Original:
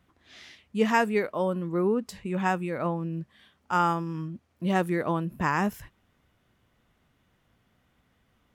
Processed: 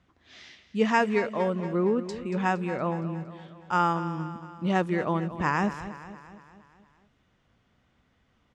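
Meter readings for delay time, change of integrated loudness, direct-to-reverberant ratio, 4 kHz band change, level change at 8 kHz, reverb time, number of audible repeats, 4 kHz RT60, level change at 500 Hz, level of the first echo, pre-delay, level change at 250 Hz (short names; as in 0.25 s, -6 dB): 0.232 s, 0.0 dB, none, +0.5 dB, -2.5 dB, none, 5, none, +0.5 dB, -13.0 dB, none, +0.5 dB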